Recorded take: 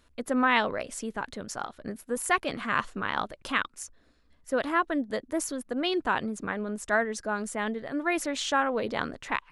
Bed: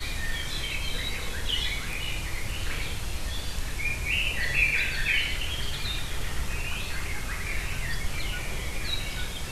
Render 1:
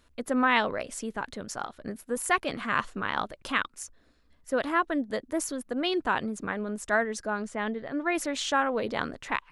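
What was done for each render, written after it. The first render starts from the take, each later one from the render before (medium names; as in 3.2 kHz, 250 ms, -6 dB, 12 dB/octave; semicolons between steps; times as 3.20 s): 7.30–8.15 s: distance through air 92 m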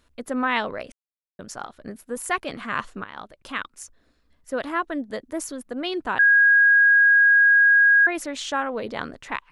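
0.92–1.39 s: mute; 3.04–3.82 s: fade in, from -12.5 dB; 6.19–8.07 s: bleep 1.64 kHz -12 dBFS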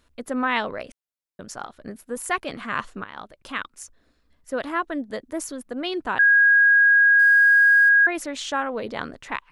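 7.19–7.89 s: companding laws mixed up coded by mu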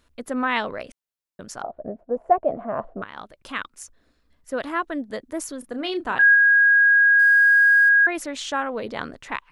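1.62–3.02 s: resonant low-pass 660 Hz, resonance Q 7.7; 5.59–6.35 s: doubling 33 ms -10 dB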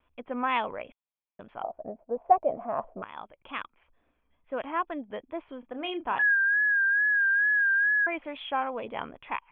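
rippled Chebyshev low-pass 3.4 kHz, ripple 9 dB; vibrato 2.3 Hz 60 cents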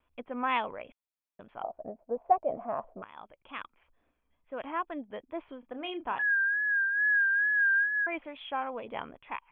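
random flutter of the level, depth 60%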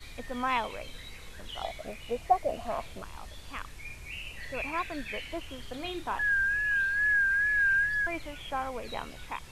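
add bed -14 dB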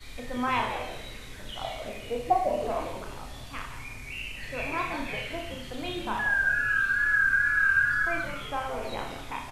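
on a send: frequency-shifting echo 169 ms, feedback 38%, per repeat -140 Hz, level -9 dB; on the sum: Schroeder reverb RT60 0.55 s, combs from 25 ms, DRR 1.5 dB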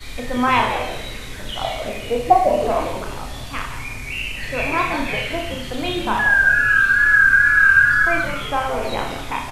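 trim +10.5 dB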